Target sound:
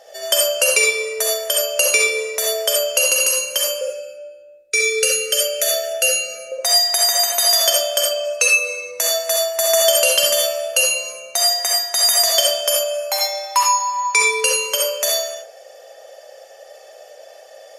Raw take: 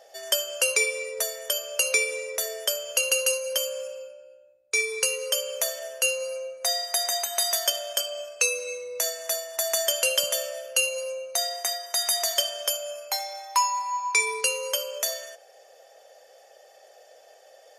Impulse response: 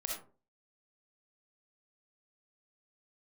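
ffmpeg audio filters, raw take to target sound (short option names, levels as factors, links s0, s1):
-filter_complex "[0:a]asettb=1/sr,asplit=3[s0][s1][s2];[s0]atrim=end=3.814[s3];[s1]atrim=start=3.81:end=6.52,asetpts=PTS-STARTPTS,afade=t=in:d=0.004:c=qsin,afade=t=out:st=2.706:d=0.004:c=qsin,asuperstop=centerf=940:order=20:qfactor=1.9[s4];[s2]atrim=start=6.516[s5];[s3][s4]acrossfade=d=0.004:c1=hsin:c2=qsin[s6];[s6][s5]acrossfade=d=0.004:c1=qsin:c2=hsin[s7];[1:a]atrim=start_sample=2205,asetrate=40572,aresample=44100[s8];[s7][s8]afir=irnorm=-1:irlink=0,volume=2.51"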